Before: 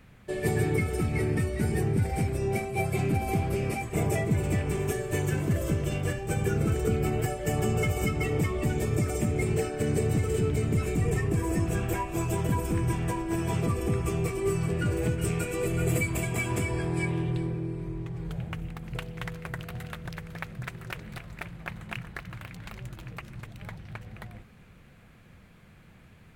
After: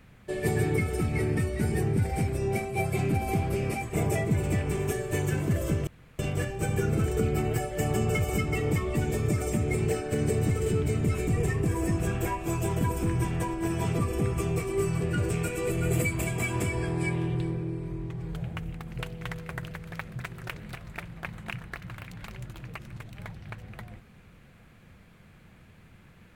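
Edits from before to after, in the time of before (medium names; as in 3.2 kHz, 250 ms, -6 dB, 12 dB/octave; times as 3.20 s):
5.87 s: insert room tone 0.32 s
14.98–15.26 s: delete
19.67–20.14 s: delete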